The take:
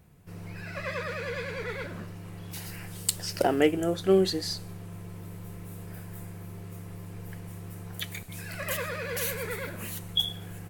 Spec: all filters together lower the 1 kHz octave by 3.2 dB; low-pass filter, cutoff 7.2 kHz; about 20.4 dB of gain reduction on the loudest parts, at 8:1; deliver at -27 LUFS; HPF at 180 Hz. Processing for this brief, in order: high-pass 180 Hz; low-pass 7.2 kHz; peaking EQ 1 kHz -5 dB; compression 8:1, threshold -39 dBFS; trim +17 dB

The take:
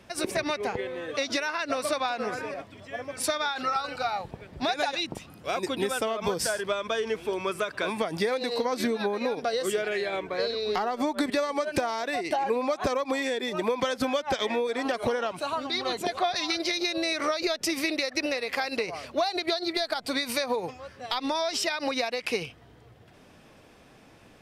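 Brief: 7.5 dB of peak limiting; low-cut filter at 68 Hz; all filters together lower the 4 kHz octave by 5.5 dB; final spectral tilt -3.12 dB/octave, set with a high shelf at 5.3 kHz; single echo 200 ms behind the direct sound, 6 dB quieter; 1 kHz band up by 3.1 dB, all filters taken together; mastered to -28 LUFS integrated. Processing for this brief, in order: high-pass 68 Hz; peaking EQ 1 kHz +4.5 dB; peaking EQ 4 kHz -8.5 dB; treble shelf 5.3 kHz +4.5 dB; peak limiter -19 dBFS; delay 200 ms -6 dB; trim +0.5 dB

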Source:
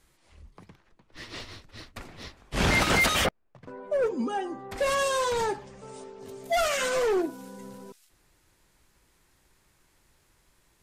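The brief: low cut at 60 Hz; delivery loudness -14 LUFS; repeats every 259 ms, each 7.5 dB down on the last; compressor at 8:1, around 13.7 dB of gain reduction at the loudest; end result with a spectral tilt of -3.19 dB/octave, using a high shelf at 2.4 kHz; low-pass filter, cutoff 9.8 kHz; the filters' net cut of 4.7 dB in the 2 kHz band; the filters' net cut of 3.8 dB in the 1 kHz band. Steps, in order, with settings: high-pass 60 Hz; low-pass 9.8 kHz; peaking EQ 1 kHz -4 dB; peaking EQ 2 kHz -7 dB; treble shelf 2.4 kHz +5 dB; compression 8:1, threshold -36 dBFS; feedback delay 259 ms, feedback 42%, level -7.5 dB; trim +25.5 dB

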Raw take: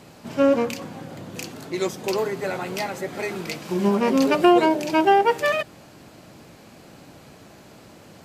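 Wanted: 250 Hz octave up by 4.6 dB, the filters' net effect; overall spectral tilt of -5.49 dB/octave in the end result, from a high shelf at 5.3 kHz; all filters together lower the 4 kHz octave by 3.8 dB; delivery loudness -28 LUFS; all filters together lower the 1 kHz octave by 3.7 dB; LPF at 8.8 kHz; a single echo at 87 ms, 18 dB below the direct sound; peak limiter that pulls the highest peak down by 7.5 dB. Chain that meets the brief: low-pass 8.8 kHz; peaking EQ 250 Hz +6.5 dB; peaking EQ 1 kHz -5.5 dB; peaking EQ 4 kHz -7.5 dB; treble shelf 5.3 kHz +5.5 dB; peak limiter -12 dBFS; delay 87 ms -18 dB; trim -4.5 dB

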